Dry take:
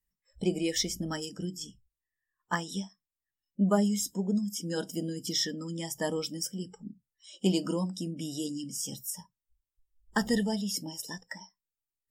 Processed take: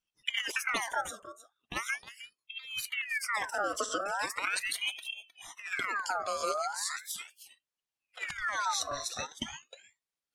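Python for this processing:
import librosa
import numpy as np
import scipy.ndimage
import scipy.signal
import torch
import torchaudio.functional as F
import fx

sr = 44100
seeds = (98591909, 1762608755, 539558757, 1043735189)

y = fx.speed_glide(x, sr, from_pct=152, to_pct=82)
y = scipy.signal.sosfilt(scipy.signal.butter(2, 180.0, 'highpass', fs=sr, output='sos'), y)
y = fx.over_compress(y, sr, threshold_db=-33.0, ratio=-0.5)
y = scipy.signal.sosfilt(scipy.signal.butter(2, 7000.0, 'lowpass', fs=sr, output='sos'), y)
y = y + 10.0 ** (-14.0 / 20.0) * np.pad(y, (int(311 * sr / 1000.0), 0))[:len(y)]
y = fx.ring_lfo(y, sr, carrier_hz=1900.0, swing_pct=55, hz=0.39)
y = y * librosa.db_to_amplitude(4.0)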